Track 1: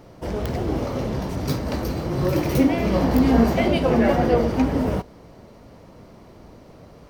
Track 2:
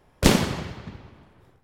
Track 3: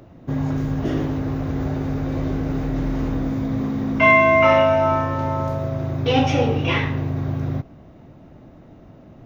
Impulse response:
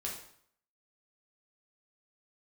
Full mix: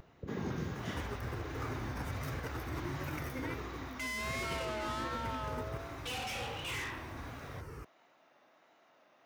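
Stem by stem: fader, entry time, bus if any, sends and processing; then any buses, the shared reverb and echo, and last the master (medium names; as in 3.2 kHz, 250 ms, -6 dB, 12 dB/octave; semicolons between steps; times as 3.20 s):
+1.0 dB, 0.75 s, bus A, no send, peaking EQ 190 Hz -15 dB 0.41 oct; static phaser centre 1.6 kHz, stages 4; Shepard-style flanger falling 0.96 Hz
-10.0 dB, 0.00 s, bus A, no send, steep low-pass 520 Hz 96 dB/octave
-5.0 dB, 0.00 s, no bus, no send, high-pass 1.1 kHz 12 dB/octave; peak limiter -17 dBFS, peak gain reduction 10.5 dB; overload inside the chain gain 33 dB
bus A: 0.0 dB, compressor with a negative ratio -38 dBFS, ratio -1; peak limiter -29 dBFS, peak gain reduction 8.5 dB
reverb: none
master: high-pass 73 Hz; vibrato 1.4 Hz 56 cents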